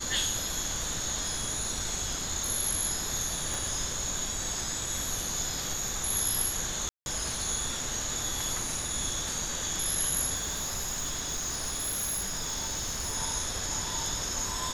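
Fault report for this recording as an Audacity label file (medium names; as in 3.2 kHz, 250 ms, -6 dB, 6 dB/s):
3.540000	3.540000	pop
6.890000	7.060000	dropout 171 ms
10.350000	13.170000	clipped -28.5 dBFS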